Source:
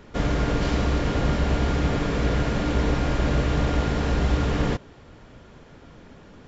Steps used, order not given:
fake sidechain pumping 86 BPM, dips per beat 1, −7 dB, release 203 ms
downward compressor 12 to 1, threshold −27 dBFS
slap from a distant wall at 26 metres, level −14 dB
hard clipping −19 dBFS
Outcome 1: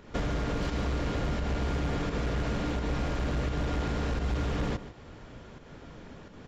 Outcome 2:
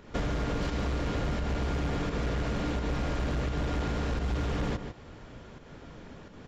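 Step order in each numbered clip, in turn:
fake sidechain pumping, then hard clipping, then downward compressor, then slap from a distant wall
fake sidechain pumping, then slap from a distant wall, then hard clipping, then downward compressor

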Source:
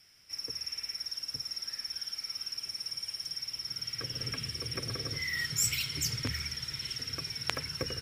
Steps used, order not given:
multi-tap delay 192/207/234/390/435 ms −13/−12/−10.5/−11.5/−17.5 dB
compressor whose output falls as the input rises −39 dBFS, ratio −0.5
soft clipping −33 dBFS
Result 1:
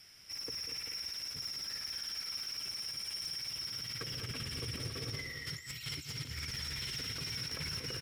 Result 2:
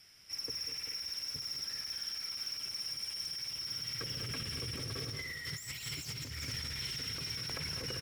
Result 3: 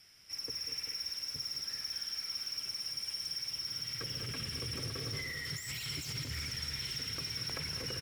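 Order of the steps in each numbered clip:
compressor whose output falls as the input rises, then soft clipping, then multi-tap delay
soft clipping, then multi-tap delay, then compressor whose output falls as the input rises
soft clipping, then compressor whose output falls as the input rises, then multi-tap delay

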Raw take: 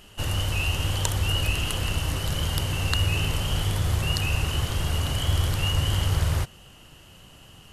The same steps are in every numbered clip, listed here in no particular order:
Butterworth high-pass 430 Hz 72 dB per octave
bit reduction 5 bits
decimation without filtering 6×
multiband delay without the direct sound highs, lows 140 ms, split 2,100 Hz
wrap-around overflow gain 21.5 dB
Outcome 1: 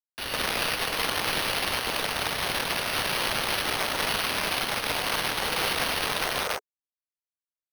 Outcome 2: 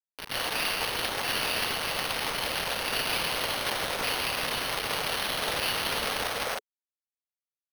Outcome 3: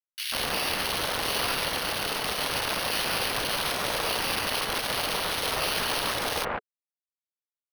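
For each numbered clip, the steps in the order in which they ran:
bit reduction, then multiband delay without the direct sound, then wrap-around overflow, then Butterworth high-pass, then decimation without filtering
multiband delay without the direct sound, then bit reduction, then wrap-around overflow, then Butterworth high-pass, then decimation without filtering
wrap-around overflow, then bit reduction, then Butterworth high-pass, then decimation without filtering, then multiband delay without the direct sound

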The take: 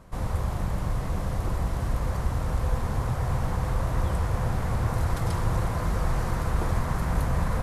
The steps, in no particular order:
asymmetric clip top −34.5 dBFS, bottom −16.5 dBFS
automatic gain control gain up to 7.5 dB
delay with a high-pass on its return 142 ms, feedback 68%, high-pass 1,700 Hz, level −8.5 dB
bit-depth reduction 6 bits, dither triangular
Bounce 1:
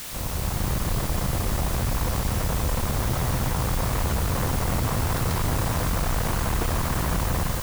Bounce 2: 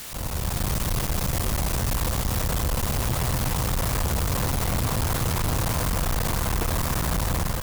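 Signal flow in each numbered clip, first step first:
automatic gain control, then asymmetric clip, then bit-depth reduction, then delay with a high-pass on its return
bit-depth reduction, then delay with a high-pass on its return, then automatic gain control, then asymmetric clip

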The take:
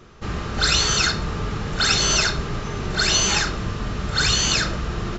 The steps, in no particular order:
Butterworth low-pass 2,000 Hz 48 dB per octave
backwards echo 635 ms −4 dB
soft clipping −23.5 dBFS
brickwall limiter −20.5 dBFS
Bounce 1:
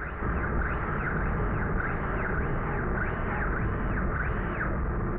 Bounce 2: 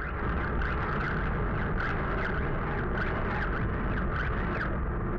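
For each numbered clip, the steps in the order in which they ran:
soft clipping, then Butterworth low-pass, then backwards echo, then brickwall limiter
Butterworth low-pass, then brickwall limiter, then backwards echo, then soft clipping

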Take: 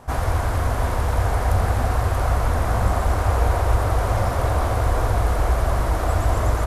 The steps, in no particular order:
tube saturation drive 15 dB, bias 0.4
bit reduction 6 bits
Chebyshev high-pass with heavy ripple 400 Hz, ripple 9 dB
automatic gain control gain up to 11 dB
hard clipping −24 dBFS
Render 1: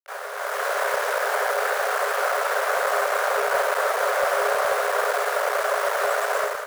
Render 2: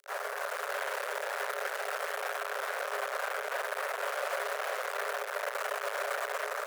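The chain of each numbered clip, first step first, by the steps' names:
tube saturation, then bit reduction, then Chebyshev high-pass with heavy ripple, then hard clipping, then automatic gain control
bit reduction, then automatic gain control, then tube saturation, then hard clipping, then Chebyshev high-pass with heavy ripple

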